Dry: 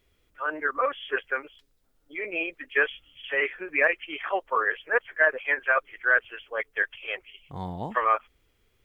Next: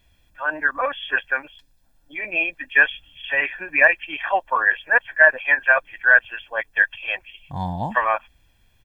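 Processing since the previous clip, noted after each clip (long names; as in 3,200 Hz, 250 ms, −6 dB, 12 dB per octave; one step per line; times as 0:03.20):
comb filter 1.2 ms, depth 77%
level +4.5 dB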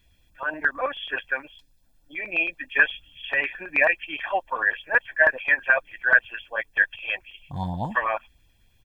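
auto-filter notch saw up 9.3 Hz 590–2,000 Hz
level −1.5 dB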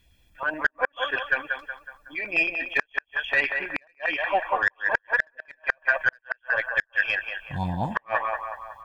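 harmonic generator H 3 −19 dB, 8 −38 dB, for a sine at −4.5 dBFS
feedback echo with a band-pass in the loop 185 ms, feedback 54%, band-pass 1,000 Hz, level −3.5 dB
gate with flip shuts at −13 dBFS, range −41 dB
level +4.5 dB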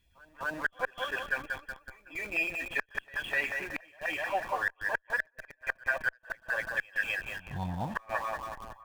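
in parallel at −11 dB: comparator with hysteresis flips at −34.5 dBFS
on the sum: backwards echo 252 ms −22.5 dB
level −8.5 dB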